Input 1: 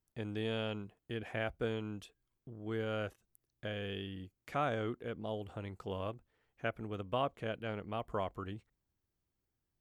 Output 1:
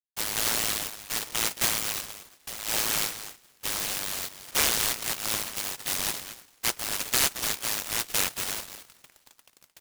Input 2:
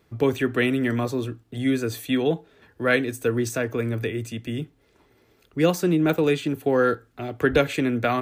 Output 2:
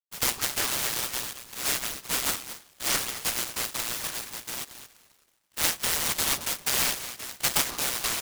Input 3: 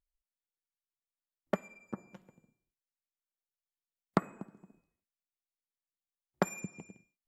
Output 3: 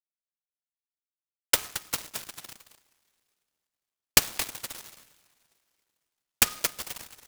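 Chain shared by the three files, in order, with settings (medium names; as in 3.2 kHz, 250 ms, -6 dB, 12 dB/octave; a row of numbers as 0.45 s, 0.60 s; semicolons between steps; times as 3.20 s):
level-controlled noise filter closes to 530 Hz, open at -22.5 dBFS; reverse; upward compressor, threshold -41 dBFS; reverse; bit crusher 9-bit; two-slope reverb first 0.23 s, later 3 s, from -18 dB, DRR 16.5 dB; frequency shift +61 Hz; on a send: delay 222 ms -12 dB; on the sum: frequency inversion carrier 3.7 kHz; delay time shaken by noise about 3.7 kHz, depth 0.12 ms; normalise loudness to -27 LUFS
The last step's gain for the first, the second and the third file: +10.0 dB, -6.5 dB, +9.5 dB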